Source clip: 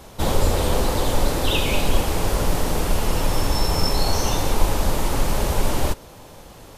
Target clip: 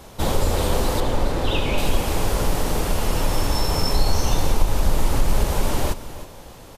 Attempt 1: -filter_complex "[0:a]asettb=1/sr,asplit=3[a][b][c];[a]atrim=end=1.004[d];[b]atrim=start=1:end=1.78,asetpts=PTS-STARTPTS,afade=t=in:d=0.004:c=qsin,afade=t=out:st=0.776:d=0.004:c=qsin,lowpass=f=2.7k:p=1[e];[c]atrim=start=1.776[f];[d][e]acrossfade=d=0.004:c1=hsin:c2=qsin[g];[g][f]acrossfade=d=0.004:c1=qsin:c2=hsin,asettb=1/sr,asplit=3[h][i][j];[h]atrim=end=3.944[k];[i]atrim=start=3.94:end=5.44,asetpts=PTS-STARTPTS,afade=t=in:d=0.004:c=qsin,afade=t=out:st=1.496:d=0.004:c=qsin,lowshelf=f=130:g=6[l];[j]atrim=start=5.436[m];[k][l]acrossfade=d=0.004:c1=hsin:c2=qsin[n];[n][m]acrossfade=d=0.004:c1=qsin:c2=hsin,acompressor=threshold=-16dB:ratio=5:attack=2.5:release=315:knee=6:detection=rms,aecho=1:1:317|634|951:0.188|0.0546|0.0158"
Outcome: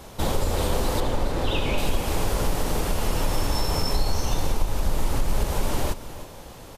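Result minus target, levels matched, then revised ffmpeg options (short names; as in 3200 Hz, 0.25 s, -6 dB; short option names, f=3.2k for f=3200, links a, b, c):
compressor: peak gain reduction +5.5 dB
-filter_complex "[0:a]asettb=1/sr,asplit=3[a][b][c];[a]atrim=end=1.004[d];[b]atrim=start=1:end=1.78,asetpts=PTS-STARTPTS,afade=t=in:d=0.004:c=qsin,afade=t=out:st=0.776:d=0.004:c=qsin,lowpass=f=2.7k:p=1[e];[c]atrim=start=1.776[f];[d][e]acrossfade=d=0.004:c1=hsin:c2=qsin[g];[g][f]acrossfade=d=0.004:c1=qsin:c2=hsin,asettb=1/sr,asplit=3[h][i][j];[h]atrim=end=3.944[k];[i]atrim=start=3.94:end=5.44,asetpts=PTS-STARTPTS,afade=t=in:d=0.004:c=qsin,afade=t=out:st=1.496:d=0.004:c=qsin,lowshelf=f=130:g=6[l];[j]atrim=start=5.436[m];[k][l]acrossfade=d=0.004:c1=hsin:c2=qsin[n];[n][m]acrossfade=d=0.004:c1=qsin:c2=hsin,acompressor=threshold=-9dB:ratio=5:attack=2.5:release=315:knee=6:detection=rms,aecho=1:1:317|634|951:0.188|0.0546|0.0158"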